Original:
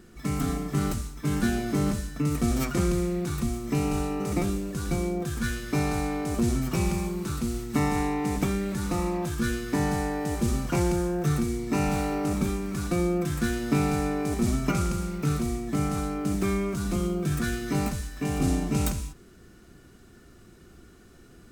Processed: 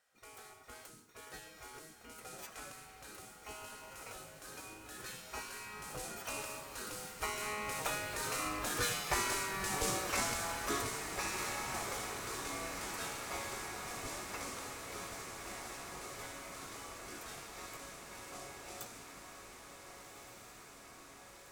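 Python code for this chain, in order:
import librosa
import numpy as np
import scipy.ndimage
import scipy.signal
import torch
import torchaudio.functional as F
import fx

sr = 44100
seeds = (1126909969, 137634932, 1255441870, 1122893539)

y = fx.doppler_pass(x, sr, speed_mps=24, closest_m=26.0, pass_at_s=9.22)
y = fx.spec_gate(y, sr, threshold_db=-15, keep='weak')
y = fx.echo_diffused(y, sr, ms=1526, feedback_pct=73, wet_db=-8.0)
y = y * 10.0 ** (3.5 / 20.0)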